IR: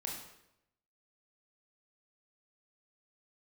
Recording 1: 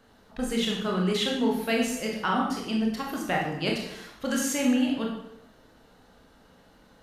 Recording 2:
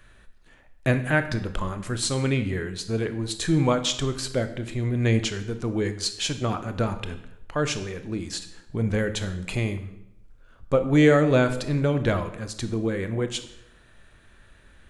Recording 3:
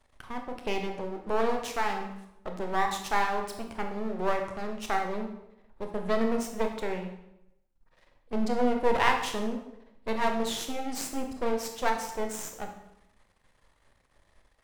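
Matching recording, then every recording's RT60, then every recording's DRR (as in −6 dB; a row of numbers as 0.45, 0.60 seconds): 1; 0.85, 0.85, 0.85 seconds; −1.5, 9.0, 3.5 decibels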